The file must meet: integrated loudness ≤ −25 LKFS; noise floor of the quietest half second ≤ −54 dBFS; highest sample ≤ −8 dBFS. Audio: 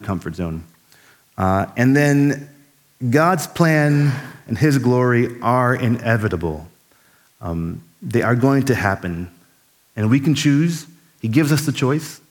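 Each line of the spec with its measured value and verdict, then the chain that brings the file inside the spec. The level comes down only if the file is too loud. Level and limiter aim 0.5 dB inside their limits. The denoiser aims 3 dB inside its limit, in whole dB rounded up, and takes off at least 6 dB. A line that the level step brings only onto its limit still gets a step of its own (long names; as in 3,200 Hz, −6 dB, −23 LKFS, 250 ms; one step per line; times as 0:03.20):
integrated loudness −18.5 LKFS: out of spec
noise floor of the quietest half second −57 dBFS: in spec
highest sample −2.5 dBFS: out of spec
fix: level −7 dB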